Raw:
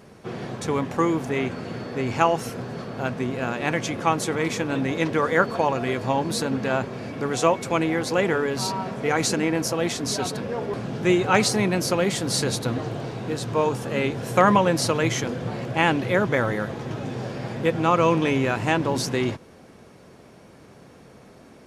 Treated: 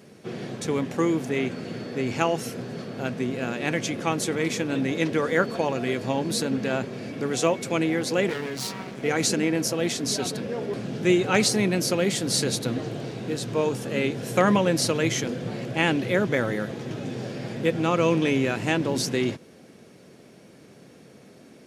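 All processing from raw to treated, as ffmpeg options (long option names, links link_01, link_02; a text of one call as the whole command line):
ffmpeg -i in.wav -filter_complex "[0:a]asettb=1/sr,asplit=3[link_01][link_02][link_03];[link_01]atrim=end=8.294[link_04];[link_02]atrim=start=8.29:end=9.03,asetpts=PTS-STARTPTS,afade=type=in:duration=0.004:curve=qsin,afade=type=out:start_time=0.736:duration=0.004:curve=qsin,equalizer=frequency=2100:width=2:gain=4,aeval=exprs='max(val(0),0)':channel_layout=same,asplit=2[link_05][link_06];[link_06]adelay=15,volume=-12dB[link_07];[link_05][link_07]amix=inputs=2:normalize=0,atrim=end_sample=32634[link_08];[link_03]atrim=start=9.026[link_09];[link_04][link_08]acrossfade=duration=0.004:curve1=hsin:curve2=qsin[link_10];[link_10][link_09]acrossfade=duration=0.004:curve1=qsin:curve2=hsin,highpass=140,equalizer=frequency=1000:width=1.1:gain=-9,volume=1dB" out.wav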